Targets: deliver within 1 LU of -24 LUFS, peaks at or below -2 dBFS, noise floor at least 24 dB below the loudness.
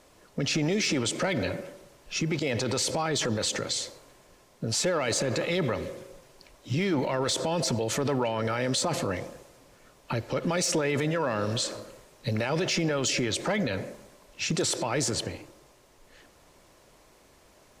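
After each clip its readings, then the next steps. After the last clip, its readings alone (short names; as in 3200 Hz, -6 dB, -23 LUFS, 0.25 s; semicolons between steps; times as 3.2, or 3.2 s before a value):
clipped 0.4%; flat tops at -19.5 dBFS; loudness -28.5 LUFS; peak -19.5 dBFS; loudness target -24.0 LUFS
-> clip repair -19.5 dBFS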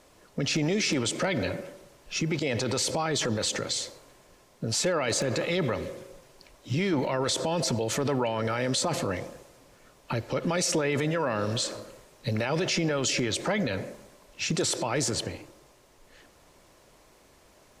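clipped 0.0%; loudness -28.0 LUFS; peak -14.0 dBFS; loudness target -24.0 LUFS
-> gain +4 dB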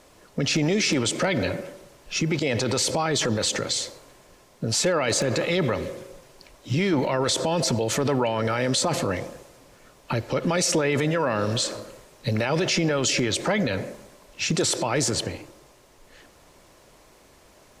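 loudness -24.0 LUFS; peak -10.0 dBFS; noise floor -55 dBFS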